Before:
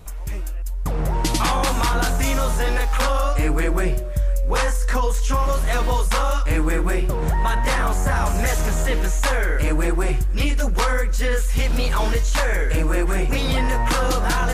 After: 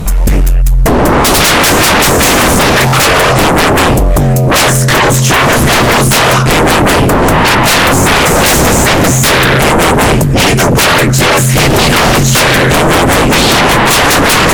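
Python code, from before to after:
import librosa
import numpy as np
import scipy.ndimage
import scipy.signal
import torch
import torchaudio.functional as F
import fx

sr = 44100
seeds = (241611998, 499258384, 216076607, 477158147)

y = fx.peak_eq(x, sr, hz=190.0, db=11.0, octaves=0.96)
y = fx.fold_sine(y, sr, drive_db=19, ceiling_db=-4.0)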